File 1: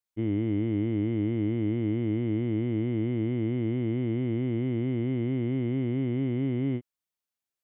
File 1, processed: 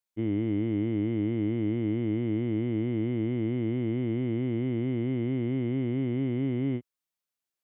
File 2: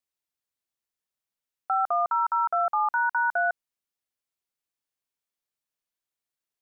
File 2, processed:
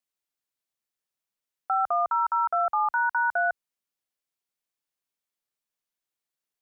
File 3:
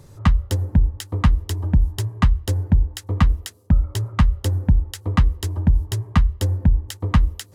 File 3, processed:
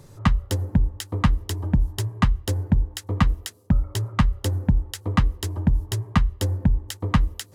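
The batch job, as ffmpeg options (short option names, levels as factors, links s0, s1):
-af "equalizer=f=63:t=o:w=0.75:g=-10.5"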